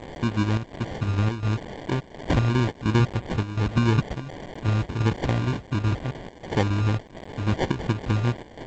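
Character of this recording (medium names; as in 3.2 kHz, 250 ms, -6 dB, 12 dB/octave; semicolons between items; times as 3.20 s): a quantiser's noise floor 6-bit, dither triangular; chopped level 1.4 Hz, depth 65%, duty 80%; aliases and images of a low sample rate 1.3 kHz, jitter 0%; G.722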